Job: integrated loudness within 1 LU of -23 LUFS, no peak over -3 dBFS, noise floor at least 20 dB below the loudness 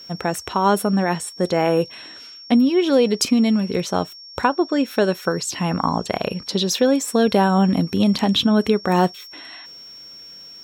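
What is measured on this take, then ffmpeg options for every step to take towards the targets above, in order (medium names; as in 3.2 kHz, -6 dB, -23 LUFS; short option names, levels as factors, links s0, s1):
steady tone 5.5 kHz; tone level -38 dBFS; loudness -19.5 LUFS; peak level -3.5 dBFS; loudness target -23.0 LUFS
-> -af "bandreject=f=5500:w=30"
-af "volume=0.668"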